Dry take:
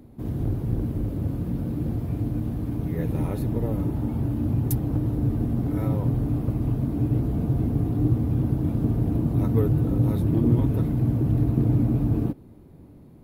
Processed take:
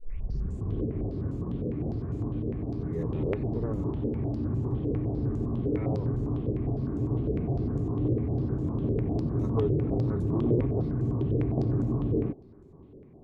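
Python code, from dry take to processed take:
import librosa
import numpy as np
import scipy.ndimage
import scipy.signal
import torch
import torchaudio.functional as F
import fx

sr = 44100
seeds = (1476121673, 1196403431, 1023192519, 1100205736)

y = fx.tape_start_head(x, sr, length_s=0.8)
y = fx.tilt_shelf(y, sr, db=3.5, hz=770.0)
y = 10.0 ** (-12.5 / 20.0) * np.tanh(y / 10.0 ** (-12.5 / 20.0))
y = fx.small_body(y, sr, hz=(400.0, 1100.0), ring_ms=45, db=10)
y = fx.filter_held_lowpass(y, sr, hz=9.9, low_hz=490.0, high_hz=7000.0)
y = y * 10.0 ** (-8.0 / 20.0)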